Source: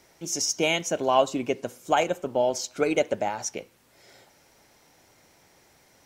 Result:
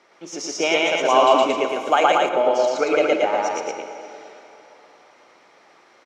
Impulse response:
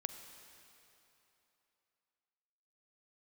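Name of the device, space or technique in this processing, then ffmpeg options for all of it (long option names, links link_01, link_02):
station announcement: -filter_complex "[0:a]highpass=340,lowpass=3500,equalizer=frequency=1200:width_type=o:width=0.22:gain=9,aecho=1:1:116.6|227.4:1|0.708[link_01];[1:a]atrim=start_sample=2205[link_02];[link_01][link_02]afir=irnorm=-1:irlink=0,asettb=1/sr,asplit=3[link_03][link_04][link_05];[link_03]atrim=end=1.054[link_06];[link_04]atrim=start=1.05:end=2.29,asetpts=PTS-STARTPTS,afade=type=in:duration=0.004:curve=qsin,afade=type=out:start_time=1.236:duration=0.004:curve=qsin,highshelf=frequency=5600:gain=11[link_07];[link_05]atrim=start=2.286[link_08];[link_06][link_07]acrossfade=duration=0.004:curve1=hsin:curve2=qsin[link_09];[link_09][link_08]acrossfade=duration=0.004:curve1=qsin:curve2=hsin,volume=5dB"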